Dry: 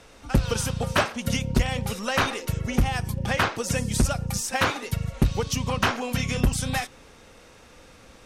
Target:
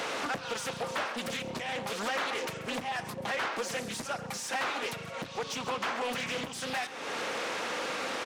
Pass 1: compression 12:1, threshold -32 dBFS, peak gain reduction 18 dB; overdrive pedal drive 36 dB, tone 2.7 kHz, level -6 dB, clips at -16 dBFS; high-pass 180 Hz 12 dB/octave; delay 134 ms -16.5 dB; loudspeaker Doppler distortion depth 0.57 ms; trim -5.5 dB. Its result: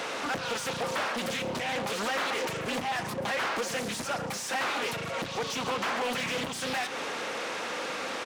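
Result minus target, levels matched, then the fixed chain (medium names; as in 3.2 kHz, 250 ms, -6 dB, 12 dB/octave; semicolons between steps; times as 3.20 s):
compression: peak gain reduction -9.5 dB
compression 12:1, threshold -42.5 dBFS, peak gain reduction 27.5 dB; overdrive pedal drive 36 dB, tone 2.7 kHz, level -6 dB, clips at -16 dBFS; high-pass 180 Hz 12 dB/octave; delay 134 ms -16.5 dB; loudspeaker Doppler distortion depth 0.57 ms; trim -5.5 dB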